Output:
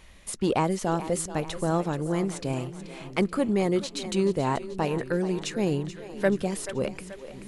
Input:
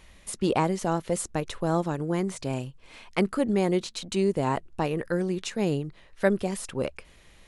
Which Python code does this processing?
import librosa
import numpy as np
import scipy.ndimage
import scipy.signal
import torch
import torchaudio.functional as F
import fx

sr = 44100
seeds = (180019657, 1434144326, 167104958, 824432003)

p1 = 10.0 ** (-20.0 / 20.0) * np.tanh(x / 10.0 ** (-20.0 / 20.0))
p2 = x + F.gain(torch.from_numpy(p1), -3.5).numpy()
p3 = fx.echo_split(p2, sr, split_hz=320.0, low_ms=571, high_ms=432, feedback_pct=52, wet_db=-13)
y = F.gain(torch.from_numpy(p3), -3.5).numpy()